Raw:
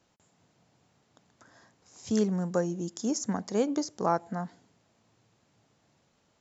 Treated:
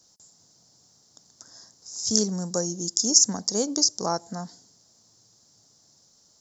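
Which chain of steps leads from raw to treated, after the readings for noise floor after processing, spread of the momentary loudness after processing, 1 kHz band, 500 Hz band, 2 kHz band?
−61 dBFS, 20 LU, −1.0 dB, 0.0 dB, −3.5 dB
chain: high shelf with overshoot 3,700 Hz +13 dB, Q 3

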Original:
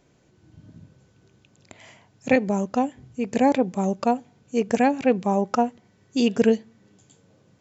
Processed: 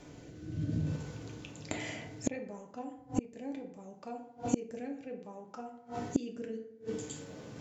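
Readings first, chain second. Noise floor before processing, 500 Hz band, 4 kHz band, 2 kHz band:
−61 dBFS, −17.5 dB, −12.0 dB, −15.0 dB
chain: transient designer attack +1 dB, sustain +5 dB
rotating-speaker cabinet horn 0.65 Hz
feedback delay network reverb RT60 0.75 s, low-frequency decay 0.9×, high-frequency decay 0.55×, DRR 1.5 dB
gate with flip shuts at −25 dBFS, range −33 dB
level +10.5 dB

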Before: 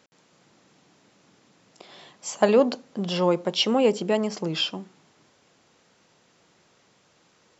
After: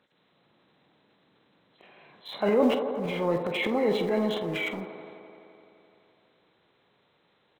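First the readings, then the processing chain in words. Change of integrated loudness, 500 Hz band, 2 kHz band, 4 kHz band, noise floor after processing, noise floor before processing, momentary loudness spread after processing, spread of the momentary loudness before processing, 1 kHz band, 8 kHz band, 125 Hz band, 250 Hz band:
−3.5 dB, −3.5 dB, +1.5 dB, −9.5 dB, −68 dBFS, −63 dBFS, 18 LU, 13 LU, −3.5 dB, can't be measured, −3.5 dB, −2.5 dB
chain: hearing-aid frequency compression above 1,200 Hz 1.5 to 1
in parallel at −10 dB: centre clipping without the shift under −30.5 dBFS
on the sum: transient designer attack −5 dB, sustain +9 dB
double-tracking delay 47 ms −12 dB
on a send: delay with a band-pass on its return 85 ms, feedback 82%, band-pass 670 Hz, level −7.5 dB
on the sum: level −7 dB

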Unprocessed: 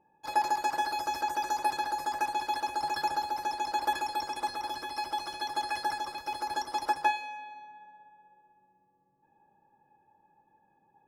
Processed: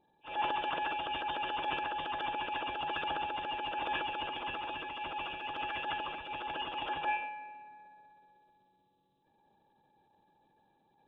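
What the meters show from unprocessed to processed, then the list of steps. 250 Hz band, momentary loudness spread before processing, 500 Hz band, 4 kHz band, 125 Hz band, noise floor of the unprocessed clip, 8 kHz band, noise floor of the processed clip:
−1.5 dB, 7 LU, −1.0 dB, −0.5 dB, can't be measured, −70 dBFS, below −35 dB, −73 dBFS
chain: hearing-aid frequency compression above 2,300 Hz 4 to 1
harmonic and percussive parts rebalanced harmonic −7 dB
transient designer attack −10 dB, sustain +6 dB
level +2.5 dB

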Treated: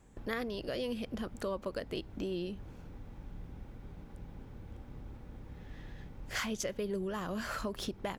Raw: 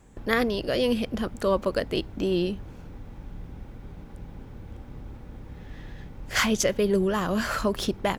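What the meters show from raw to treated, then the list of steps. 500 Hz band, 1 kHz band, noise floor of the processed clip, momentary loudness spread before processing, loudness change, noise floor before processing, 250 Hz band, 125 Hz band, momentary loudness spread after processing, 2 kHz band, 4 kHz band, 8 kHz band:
−12.0 dB, −12.0 dB, −52 dBFS, 20 LU, −13.5 dB, −44 dBFS, −11.5 dB, −10.0 dB, 14 LU, −12.0 dB, −11.5 dB, −12.0 dB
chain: downward compressor 2.5 to 1, threshold −29 dBFS, peak gain reduction 7.5 dB
level −6.5 dB

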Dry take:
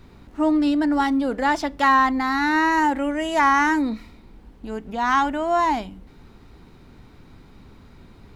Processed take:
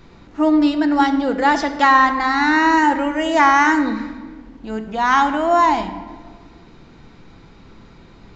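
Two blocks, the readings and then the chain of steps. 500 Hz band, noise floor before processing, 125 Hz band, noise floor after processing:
+5.0 dB, −49 dBFS, can't be measured, −45 dBFS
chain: low-shelf EQ 180 Hz −5.5 dB
rectangular room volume 1,600 cubic metres, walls mixed, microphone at 0.74 metres
downsampling to 16,000 Hz
level +4.5 dB

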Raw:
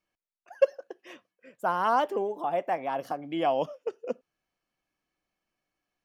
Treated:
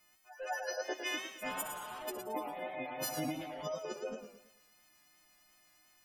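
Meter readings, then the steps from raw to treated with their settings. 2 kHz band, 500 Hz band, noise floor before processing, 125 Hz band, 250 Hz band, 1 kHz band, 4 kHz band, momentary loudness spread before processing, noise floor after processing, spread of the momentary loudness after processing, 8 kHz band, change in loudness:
−2.0 dB, −11.5 dB, below −85 dBFS, −3.0 dB, −6.0 dB, −13.0 dB, +1.5 dB, 13 LU, −68 dBFS, 7 LU, can't be measured, −10.0 dB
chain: every partial snapped to a pitch grid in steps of 3 semitones
parametric band 460 Hz −13 dB 0.22 octaves
pitch vibrato 8.7 Hz 7.9 cents
gain into a clipping stage and back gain 32 dB
echo ahead of the sound 201 ms −17.5 dB
compressor whose output falls as the input rises −44 dBFS, ratio −1
on a send: delay with a high-pass on its return 62 ms, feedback 69%, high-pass 4,400 Hz, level −10 dB
on the sum: gate on every frequency bin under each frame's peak −25 dB strong
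feedback echo with a swinging delay time 109 ms, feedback 39%, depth 98 cents, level −7.5 dB
level +3 dB

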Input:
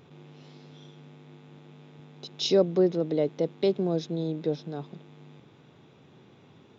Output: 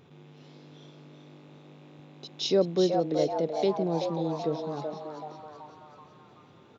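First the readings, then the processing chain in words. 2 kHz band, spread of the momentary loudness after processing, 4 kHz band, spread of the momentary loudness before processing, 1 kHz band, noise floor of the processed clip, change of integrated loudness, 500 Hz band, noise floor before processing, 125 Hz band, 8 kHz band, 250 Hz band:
−0.5 dB, 21 LU, −1.0 dB, 17 LU, +9.0 dB, −55 dBFS, −1.0 dB, −0.5 dB, −56 dBFS, −2.0 dB, can't be measured, −1.5 dB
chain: echo with shifted repeats 380 ms, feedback 49%, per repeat +150 Hz, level −6 dB
level −2 dB

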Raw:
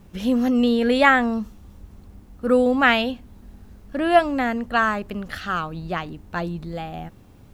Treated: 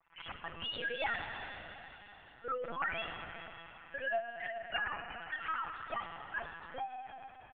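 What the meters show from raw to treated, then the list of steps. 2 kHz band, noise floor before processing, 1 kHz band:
−14.0 dB, −48 dBFS, −16.0 dB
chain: three sine waves on the formant tracks
high-pass filter 820 Hz 24 dB per octave
comb filter 6 ms, depth 67%
downward compressor 5 to 1, threshold −30 dBFS, peak gain reduction 20.5 dB
single-tap delay 407 ms −17.5 dB
four-comb reverb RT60 3.9 s, combs from 31 ms, DRR 4.5 dB
linear-prediction vocoder at 8 kHz pitch kept
level −5 dB

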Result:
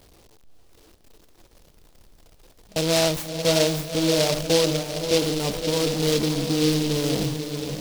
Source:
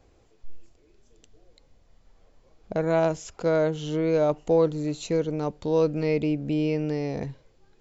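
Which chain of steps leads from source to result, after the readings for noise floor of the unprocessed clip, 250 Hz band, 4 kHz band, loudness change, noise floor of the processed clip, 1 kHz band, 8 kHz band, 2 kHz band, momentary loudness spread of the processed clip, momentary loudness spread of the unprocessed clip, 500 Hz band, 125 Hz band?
−60 dBFS, +2.5 dB, +19.0 dB, +3.0 dB, −54 dBFS, +1.0 dB, can't be measured, +7.0 dB, 6 LU, 8 LU, +1.0 dB, +3.5 dB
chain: converter with a step at zero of −26 dBFS
noise gate with hold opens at −17 dBFS
mains-hum notches 60/120/180/240/300/360/420/480/540/600 Hz
feedback delay with all-pass diffusion 568 ms, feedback 48%, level −6.5 dB
short delay modulated by noise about 3,900 Hz, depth 0.15 ms

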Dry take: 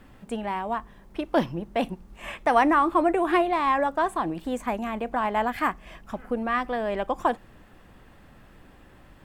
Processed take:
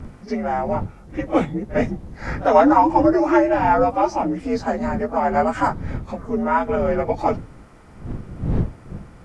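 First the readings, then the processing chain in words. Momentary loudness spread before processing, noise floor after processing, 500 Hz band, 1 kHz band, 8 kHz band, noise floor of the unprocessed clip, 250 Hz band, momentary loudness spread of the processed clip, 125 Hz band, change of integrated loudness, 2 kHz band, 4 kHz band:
15 LU, −44 dBFS, +7.5 dB, +5.0 dB, can't be measured, −52 dBFS, +7.5 dB, 16 LU, +14.5 dB, +5.5 dB, +1.0 dB, −2.5 dB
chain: partials spread apart or drawn together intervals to 86%
wind on the microphone 160 Hz −39 dBFS
echo ahead of the sound 49 ms −18 dB
level +8 dB

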